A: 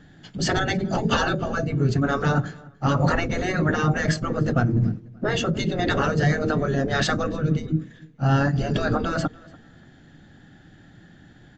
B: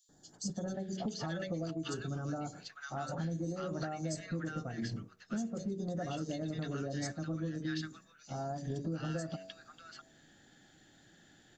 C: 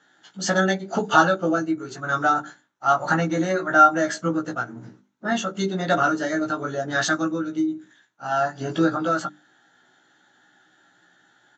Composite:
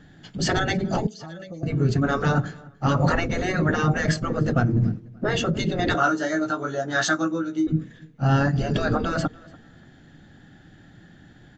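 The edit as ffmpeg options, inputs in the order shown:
-filter_complex "[0:a]asplit=3[s0][s1][s2];[s0]atrim=end=1.072[s3];[1:a]atrim=start=1.068:end=1.632[s4];[s1]atrim=start=1.628:end=5.952[s5];[2:a]atrim=start=5.948:end=7.672[s6];[s2]atrim=start=7.668[s7];[s3][s4]acrossfade=d=0.004:c1=hsin:c2=hsin[s8];[s8][s5]acrossfade=d=0.004:c1=hsin:c2=hsin[s9];[s9][s6]acrossfade=d=0.004:c1=hsin:c2=hsin[s10];[s10][s7]acrossfade=d=0.004:c1=hsin:c2=hsin"

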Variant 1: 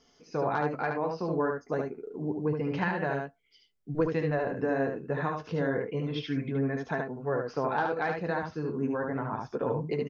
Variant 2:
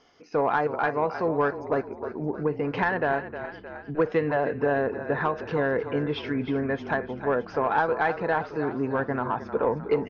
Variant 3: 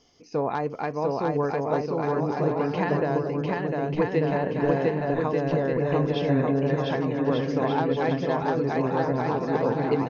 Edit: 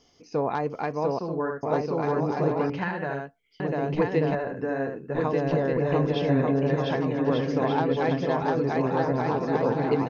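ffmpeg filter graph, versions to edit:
-filter_complex "[0:a]asplit=3[s0][s1][s2];[2:a]asplit=4[s3][s4][s5][s6];[s3]atrim=end=1.192[s7];[s0]atrim=start=1.188:end=1.632[s8];[s4]atrim=start=1.628:end=2.702[s9];[s1]atrim=start=2.698:end=3.602[s10];[s5]atrim=start=3.598:end=4.352[s11];[s2]atrim=start=4.348:end=5.152[s12];[s6]atrim=start=5.148[s13];[s7][s8]acrossfade=d=0.004:c1=hsin:c2=hsin[s14];[s14][s9]acrossfade=d=0.004:c1=hsin:c2=hsin[s15];[s15][s10]acrossfade=d=0.004:c1=hsin:c2=hsin[s16];[s16][s11]acrossfade=d=0.004:c1=hsin:c2=hsin[s17];[s17][s12]acrossfade=d=0.004:c1=hsin:c2=hsin[s18];[s18][s13]acrossfade=d=0.004:c1=hsin:c2=hsin"

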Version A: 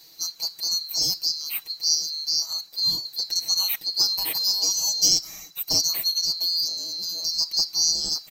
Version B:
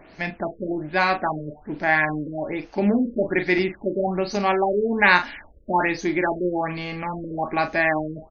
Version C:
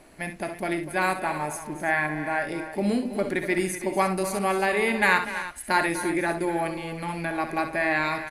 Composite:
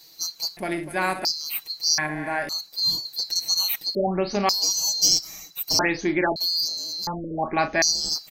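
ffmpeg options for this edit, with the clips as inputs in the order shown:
-filter_complex "[2:a]asplit=2[s0][s1];[1:a]asplit=3[s2][s3][s4];[0:a]asplit=6[s5][s6][s7][s8][s9][s10];[s5]atrim=end=0.572[s11];[s0]atrim=start=0.568:end=1.252[s12];[s6]atrim=start=1.248:end=1.982[s13];[s1]atrim=start=1.978:end=2.492[s14];[s7]atrim=start=2.488:end=3.952[s15];[s2]atrim=start=3.948:end=4.492[s16];[s8]atrim=start=4.488:end=5.792[s17];[s3]atrim=start=5.788:end=6.362[s18];[s9]atrim=start=6.358:end=7.072[s19];[s4]atrim=start=7.068:end=7.822[s20];[s10]atrim=start=7.818[s21];[s11][s12]acrossfade=d=0.004:c1=hsin:c2=hsin[s22];[s22][s13]acrossfade=d=0.004:c1=hsin:c2=hsin[s23];[s23][s14]acrossfade=d=0.004:c1=hsin:c2=hsin[s24];[s24][s15]acrossfade=d=0.004:c1=hsin:c2=hsin[s25];[s25][s16]acrossfade=d=0.004:c1=hsin:c2=hsin[s26];[s26][s17]acrossfade=d=0.004:c1=hsin:c2=hsin[s27];[s27][s18]acrossfade=d=0.004:c1=hsin:c2=hsin[s28];[s28][s19]acrossfade=d=0.004:c1=hsin:c2=hsin[s29];[s29][s20]acrossfade=d=0.004:c1=hsin:c2=hsin[s30];[s30][s21]acrossfade=d=0.004:c1=hsin:c2=hsin"

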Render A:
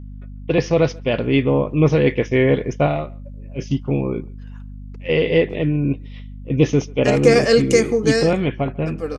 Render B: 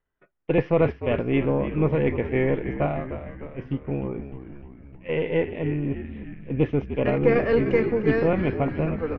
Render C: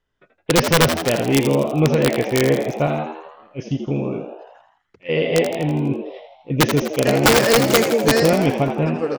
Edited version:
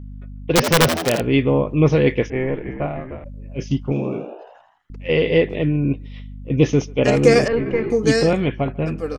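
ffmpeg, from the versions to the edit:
-filter_complex "[2:a]asplit=2[s0][s1];[1:a]asplit=2[s2][s3];[0:a]asplit=5[s4][s5][s6][s7][s8];[s4]atrim=end=0.552[s9];[s0]atrim=start=0.548:end=1.212[s10];[s5]atrim=start=1.208:end=2.302[s11];[s2]atrim=start=2.298:end=3.242[s12];[s6]atrim=start=3.238:end=3.922[s13];[s1]atrim=start=3.918:end=4.902[s14];[s7]atrim=start=4.898:end=7.482[s15];[s3]atrim=start=7.478:end=7.902[s16];[s8]atrim=start=7.898[s17];[s9][s10]acrossfade=d=0.004:c1=hsin:c2=hsin[s18];[s18][s11]acrossfade=d=0.004:c1=hsin:c2=hsin[s19];[s19][s12]acrossfade=d=0.004:c1=hsin:c2=hsin[s20];[s20][s13]acrossfade=d=0.004:c1=hsin:c2=hsin[s21];[s21][s14]acrossfade=d=0.004:c1=hsin:c2=hsin[s22];[s22][s15]acrossfade=d=0.004:c1=hsin:c2=hsin[s23];[s23][s16]acrossfade=d=0.004:c1=hsin:c2=hsin[s24];[s24][s17]acrossfade=d=0.004:c1=hsin:c2=hsin"

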